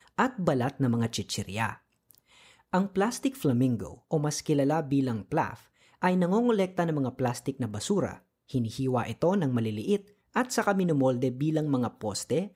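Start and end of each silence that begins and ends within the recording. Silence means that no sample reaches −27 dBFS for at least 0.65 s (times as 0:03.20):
0:01.72–0:02.74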